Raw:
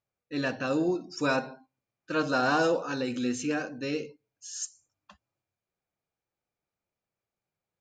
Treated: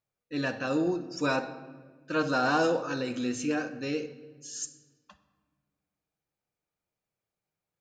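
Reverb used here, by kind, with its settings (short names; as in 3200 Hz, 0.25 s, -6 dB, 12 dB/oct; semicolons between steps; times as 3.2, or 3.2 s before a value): shoebox room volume 1500 m³, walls mixed, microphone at 0.5 m; gain -1 dB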